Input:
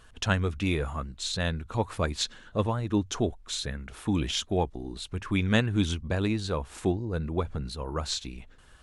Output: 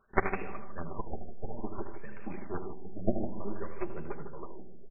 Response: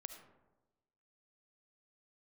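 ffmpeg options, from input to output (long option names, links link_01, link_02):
-filter_complex "[0:a]acrossover=split=2700[link_01][link_02];[link_02]acompressor=threshold=-46dB:ratio=4:attack=1:release=60[link_03];[link_01][link_03]amix=inputs=2:normalize=0,aemphasis=mode=production:type=riaa,aeval=exprs='0.376*(cos(1*acos(clip(val(0)/0.376,-1,1)))-cos(1*PI/2))+0.0106*(cos(2*acos(clip(val(0)/0.376,-1,1)))-cos(2*PI/2))+0.168*(cos(3*acos(clip(val(0)/0.376,-1,1)))-cos(3*PI/2))+0.0188*(cos(5*acos(clip(val(0)/0.376,-1,1)))-cos(5*PI/2))+0.00473*(cos(6*acos(clip(val(0)/0.376,-1,1)))-cos(6*PI/2))':channel_layout=same,aecho=1:1:5.1:0.47,flanger=delay=5.2:depth=8:regen=-9:speed=1.6:shape=sinusoidal,tiltshelf=frequency=970:gain=3.5,asplit=2[link_04][link_05];[link_05]acrusher=bits=3:mix=0:aa=0.000001,volume=-6dB[link_06];[link_04][link_06]amix=inputs=2:normalize=0,asoftclip=type=tanh:threshold=-20.5dB,atempo=1.8,aecho=1:1:47|77|98|154|732:0.112|0.376|0.237|0.355|0.1,asplit=2[link_07][link_08];[1:a]atrim=start_sample=2205,asetrate=25578,aresample=44100[link_09];[link_08][link_09]afir=irnorm=-1:irlink=0,volume=-5.5dB[link_10];[link_07][link_10]amix=inputs=2:normalize=0,afftfilt=real='re*lt(b*sr/1024,760*pow(2800/760,0.5+0.5*sin(2*PI*0.57*pts/sr)))':imag='im*lt(b*sr/1024,760*pow(2800/760,0.5+0.5*sin(2*PI*0.57*pts/sr)))':win_size=1024:overlap=0.75,volume=14dB"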